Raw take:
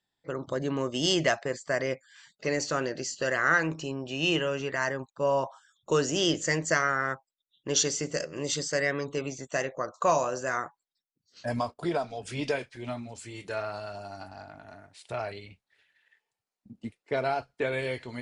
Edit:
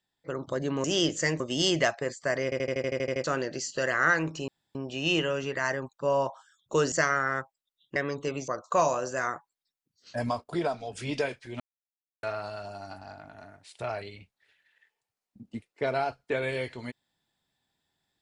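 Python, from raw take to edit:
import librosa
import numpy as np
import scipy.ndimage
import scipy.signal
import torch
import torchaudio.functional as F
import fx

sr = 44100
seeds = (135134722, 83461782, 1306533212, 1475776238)

y = fx.edit(x, sr, fx.stutter_over(start_s=1.88, slice_s=0.08, count=10),
    fx.insert_room_tone(at_s=3.92, length_s=0.27),
    fx.move(start_s=6.09, length_s=0.56, to_s=0.84),
    fx.cut(start_s=7.69, length_s=1.17),
    fx.cut(start_s=9.38, length_s=0.4),
    fx.silence(start_s=12.9, length_s=0.63), tone=tone)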